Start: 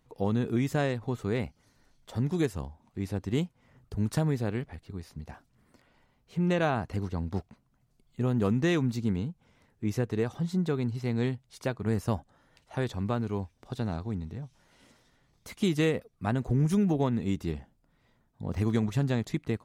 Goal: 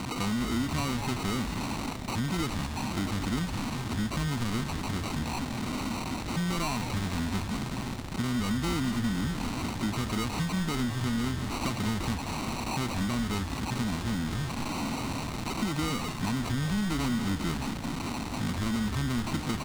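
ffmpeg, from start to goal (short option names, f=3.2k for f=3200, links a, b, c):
-filter_complex "[0:a]aeval=exprs='val(0)+0.5*0.0266*sgn(val(0))':c=same,highpass=47,asplit=2[a][b];[b]aecho=0:1:583:0.0841[c];[a][c]amix=inputs=2:normalize=0,acrusher=samples=26:mix=1:aa=0.000001,asoftclip=type=tanh:threshold=-26dB,equalizer=f=250:t=o:w=1:g=11,equalizer=f=500:t=o:w=1:g=-9,equalizer=f=1k:t=o:w=1:g=7,equalizer=f=2k:t=o:w=1:g=4,equalizer=f=4k:t=o:w=1:g=7,equalizer=f=8k:t=o:w=1:g=6,acompressor=threshold=-27dB:ratio=6,asplit=2[d][e];[e]asplit=6[f][g][h][i][j][k];[f]adelay=201,afreqshift=-150,volume=-9dB[l];[g]adelay=402,afreqshift=-300,volume=-14.4dB[m];[h]adelay=603,afreqshift=-450,volume=-19.7dB[n];[i]adelay=804,afreqshift=-600,volume=-25.1dB[o];[j]adelay=1005,afreqshift=-750,volume=-30.4dB[p];[k]adelay=1206,afreqshift=-900,volume=-35.8dB[q];[l][m][n][o][p][q]amix=inputs=6:normalize=0[r];[d][r]amix=inputs=2:normalize=0"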